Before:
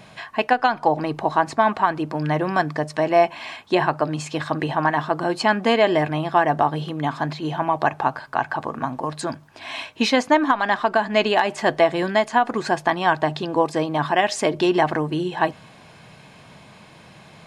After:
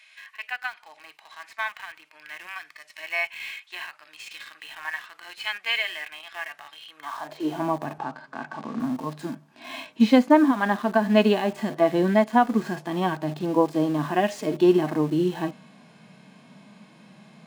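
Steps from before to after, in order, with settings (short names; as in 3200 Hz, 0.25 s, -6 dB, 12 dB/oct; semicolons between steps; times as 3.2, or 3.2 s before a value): high-pass sweep 2200 Hz -> 210 Hz, 6.86–7.65; in parallel at -8.5 dB: bit-crush 5-bit; on the sum: harmonic-percussive split percussive -18 dB; 7.98–8.8 BPF 120–5900 Hz; gain -3.5 dB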